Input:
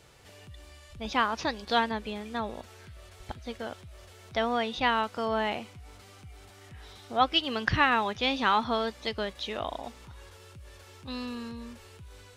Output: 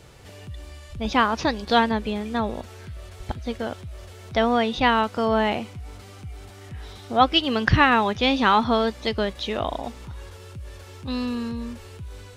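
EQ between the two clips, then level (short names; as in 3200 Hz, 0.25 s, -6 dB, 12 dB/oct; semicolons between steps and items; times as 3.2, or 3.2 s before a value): low shelf 470 Hz +6.5 dB; +5.0 dB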